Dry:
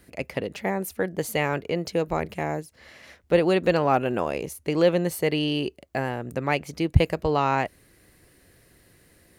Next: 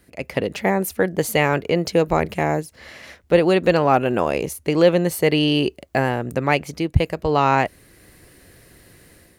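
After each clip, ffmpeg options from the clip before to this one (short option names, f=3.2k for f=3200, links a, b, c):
-af "dynaudnorm=f=110:g=5:m=9dB,volume=-1dB"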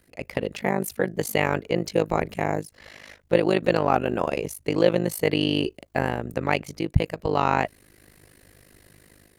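-af "tremolo=f=51:d=0.919,volume=-1dB"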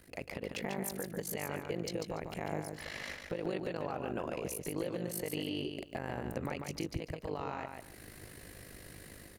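-filter_complex "[0:a]acompressor=threshold=-28dB:ratio=6,alimiter=level_in=4.5dB:limit=-24dB:level=0:latency=1:release=217,volume=-4.5dB,asplit=2[a][b];[b]aecho=0:1:144|288|432:0.531|0.111|0.0234[c];[a][c]amix=inputs=2:normalize=0,volume=2dB"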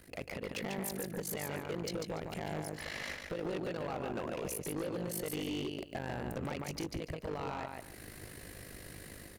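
-af "asoftclip=type=hard:threshold=-35dB,volume=2dB"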